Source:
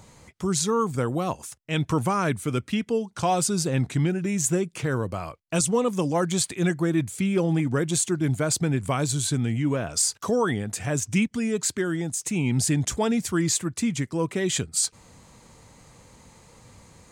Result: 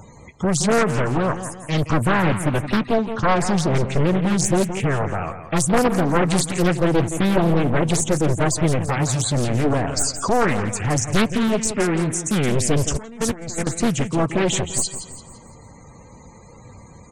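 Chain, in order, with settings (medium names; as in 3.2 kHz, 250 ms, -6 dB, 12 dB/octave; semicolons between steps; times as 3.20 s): one-sided wavefolder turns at -24 dBFS; 2.89–3.81 s: treble shelf 8.1 kHz -12 dB; loudest bins only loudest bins 64; 8.85–9.35 s: comb of notches 610 Hz; feedback delay 170 ms, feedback 43%, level -10.5 dB; 12.92–13.67 s: compressor with a negative ratio -33 dBFS, ratio -0.5; loudspeaker Doppler distortion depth 0.71 ms; trim +8 dB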